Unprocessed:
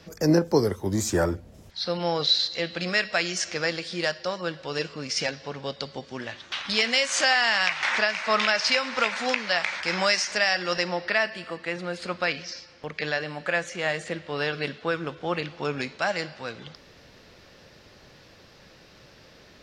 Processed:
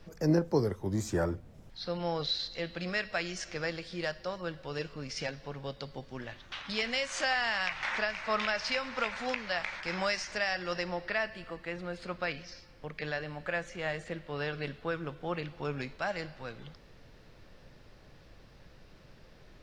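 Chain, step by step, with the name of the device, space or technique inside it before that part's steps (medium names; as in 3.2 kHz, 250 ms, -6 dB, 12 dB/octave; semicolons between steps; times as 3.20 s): car interior (peaking EQ 130 Hz +5.5 dB 0.65 oct; treble shelf 3.6 kHz -7.5 dB; brown noise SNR 20 dB); trim -7 dB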